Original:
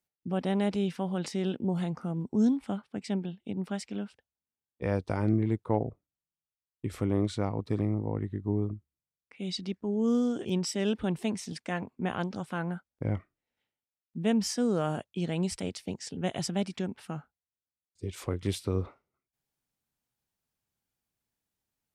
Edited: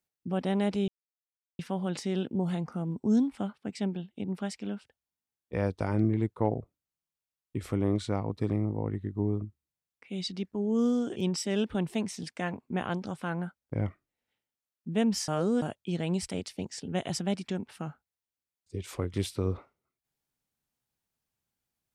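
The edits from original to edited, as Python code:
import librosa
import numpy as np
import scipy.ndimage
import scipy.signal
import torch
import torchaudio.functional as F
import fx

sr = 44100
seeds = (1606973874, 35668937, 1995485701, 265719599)

y = fx.edit(x, sr, fx.insert_silence(at_s=0.88, length_s=0.71),
    fx.reverse_span(start_s=14.57, length_s=0.34), tone=tone)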